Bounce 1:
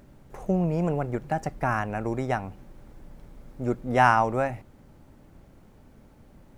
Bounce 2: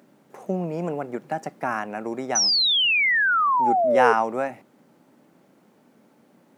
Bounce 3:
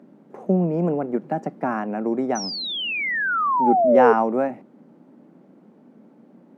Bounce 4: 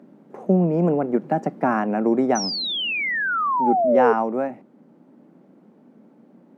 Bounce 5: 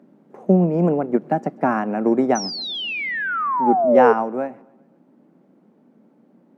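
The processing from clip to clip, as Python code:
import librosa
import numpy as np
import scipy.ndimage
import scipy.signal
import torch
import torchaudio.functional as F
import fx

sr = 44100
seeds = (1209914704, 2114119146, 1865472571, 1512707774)

y1 = scipy.signal.sosfilt(scipy.signal.butter(4, 190.0, 'highpass', fs=sr, output='sos'), x)
y1 = fx.spec_paint(y1, sr, seeds[0], shape='fall', start_s=2.35, length_s=1.78, low_hz=430.0, high_hz=6100.0, level_db=-20.0)
y2 = scipy.signal.sosfilt(scipy.signal.butter(4, 180.0, 'highpass', fs=sr, output='sos'), y1)
y2 = fx.tilt_eq(y2, sr, slope=-4.5)
y3 = fx.rider(y2, sr, range_db=10, speed_s=2.0)
y4 = fx.echo_feedback(y3, sr, ms=131, feedback_pct=57, wet_db=-23.5)
y4 = fx.upward_expand(y4, sr, threshold_db=-28.0, expansion=1.5)
y4 = y4 * 10.0 ** (4.0 / 20.0)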